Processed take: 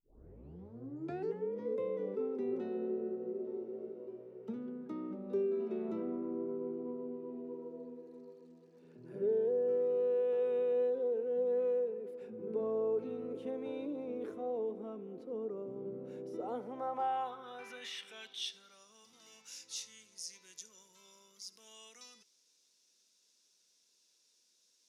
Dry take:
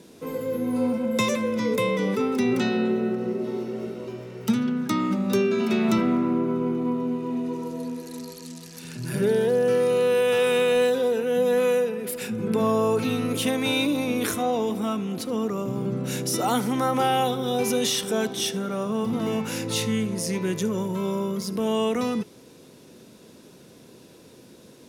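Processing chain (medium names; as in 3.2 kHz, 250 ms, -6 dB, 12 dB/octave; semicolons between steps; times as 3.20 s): tape start-up on the opening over 1.67 s; band-pass sweep 430 Hz -> 5.8 kHz, 16.43–18.89 s; trim -9 dB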